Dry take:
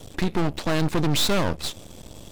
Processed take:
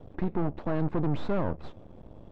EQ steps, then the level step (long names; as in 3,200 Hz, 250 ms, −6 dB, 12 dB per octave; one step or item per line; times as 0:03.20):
low-pass filter 1,100 Hz 12 dB per octave
−5.0 dB